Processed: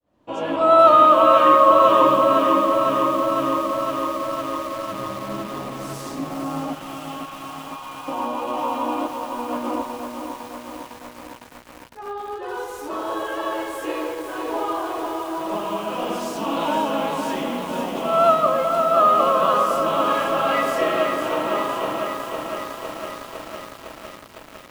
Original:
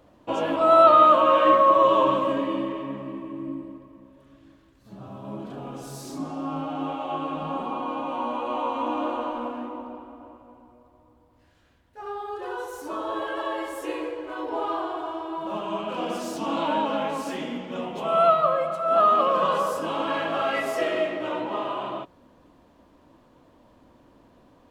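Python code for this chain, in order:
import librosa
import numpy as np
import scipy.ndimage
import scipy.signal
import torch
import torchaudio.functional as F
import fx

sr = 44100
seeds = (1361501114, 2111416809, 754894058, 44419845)

y = fx.fade_in_head(x, sr, length_s=0.58)
y = fx.highpass(y, sr, hz=1400.0, slope=12, at=(6.73, 8.08))
y = fx.over_compress(y, sr, threshold_db=-35.0, ratio=-0.5, at=(9.06, 9.81), fade=0.02)
y = fx.echo_crushed(y, sr, ms=506, feedback_pct=80, bits=7, wet_db=-6)
y = F.gain(torch.from_numpy(y), 2.5).numpy()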